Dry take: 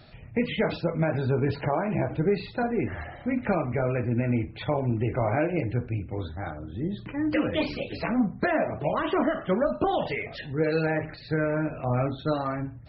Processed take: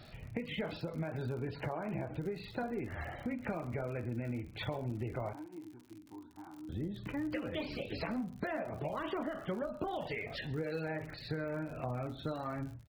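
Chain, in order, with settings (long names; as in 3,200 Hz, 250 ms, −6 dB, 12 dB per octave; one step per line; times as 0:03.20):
downward compressor 6 to 1, threshold −33 dBFS, peak gain reduction 13.5 dB
0:05.33–0:06.69: pair of resonant band-passes 540 Hz, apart 1.6 octaves
surface crackle 78 per second −43 dBFS
single-tap delay 134 ms −22.5 dB
every ending faded ahead of time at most 150 dB per second
level −2 dB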